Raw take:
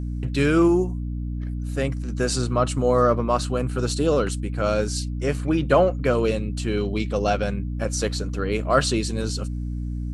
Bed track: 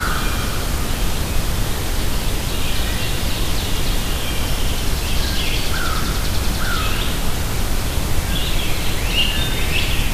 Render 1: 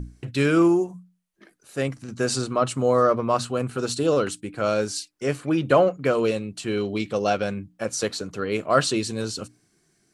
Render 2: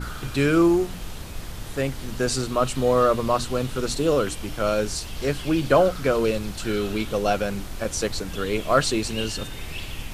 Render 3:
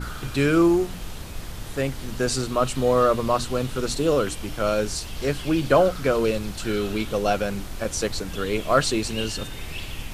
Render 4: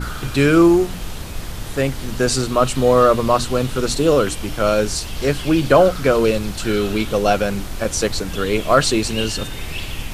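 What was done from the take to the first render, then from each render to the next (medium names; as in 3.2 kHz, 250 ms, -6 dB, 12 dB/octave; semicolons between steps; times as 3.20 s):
hum notches 60/120/180/240/300 Hz
add bed track -15 dB
no audible change
trim +6 dB; peak limiter -1 dBFS, peak gain reduction 1.5 dB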